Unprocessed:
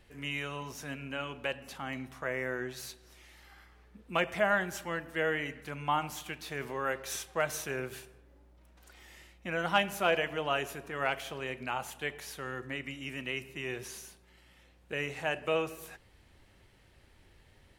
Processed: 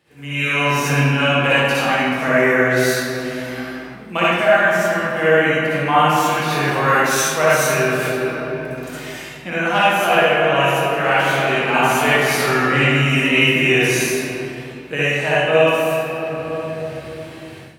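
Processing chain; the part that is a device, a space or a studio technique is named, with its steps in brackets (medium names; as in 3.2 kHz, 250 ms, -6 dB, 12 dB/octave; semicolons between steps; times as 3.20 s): simulated room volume 120 m³, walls hard, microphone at 0.52 m; far laptop microphone (reverberation RT60 0.35 s, pre-delay 56 ms, DRR -6 dB; high-pass 110 Hz 24 dB/octave; level rider gain up to 16.5 dB); trim -1 dB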